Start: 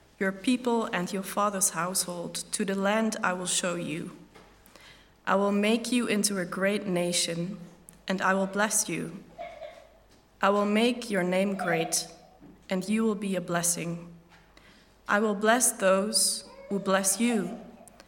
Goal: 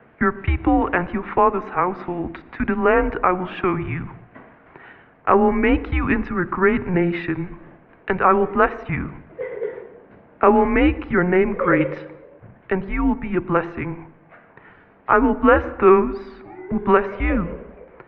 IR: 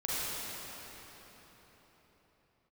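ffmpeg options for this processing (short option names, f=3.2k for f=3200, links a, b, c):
-filter_complex "[0:a]asettb=1/sr,asplit=3[a][b][c];[a]atrim=end=9.514[d];[b]atrim=start=9.51:end=10.49,asetpts=PTS-STARTPTS,afade=t=in:d=0.004:c=qsin,afade=t=out:st=0.976:d=0.004:c=qsin,equalizer=f=490:t=o:w=1.9:g=5.5[e];[c]atrim=start=10.486[f];[d][e]acrossfade=d=0.004:c1=hsin:c2=qsin[g];[g][f]acrossfade=d=0.004:c1=qsin:c2=hsin,highpass=f=290:t=q:w=0.5412,highpass=f=290:t=q:w=1.307,lowpass=f=2.4k:t=q:w=0.5176,lowpass=f=2.4k:t=q:w=0.7071,lowpass=f=2.4k:t=q:w=1.932,afreqshift=-180,alimiter=level_in=12dB:limit=-1dB:release=50:level=0:latency=1,volume=-1dB"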